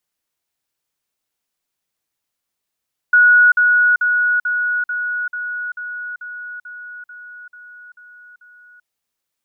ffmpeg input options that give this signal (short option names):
-f lavfi -i "aevalsrc='pow(10,(-7-3*floor(t/0.44))/20)*sin(2*PI*1460*t)*clip(min(mod(t,0.44),0.39-mod(t,0.44))/0.005,0,1)':d=5.72:s=44100"